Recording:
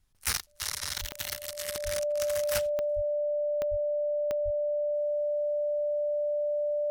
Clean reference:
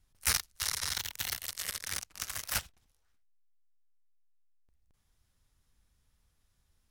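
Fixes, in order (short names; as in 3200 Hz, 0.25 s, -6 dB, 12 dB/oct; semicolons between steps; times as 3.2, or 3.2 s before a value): clip repair -17.5 dBFS; de-click; notch 590 Hz, Q 30; de-plosive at 1/1.84/2.95/3.7/4.44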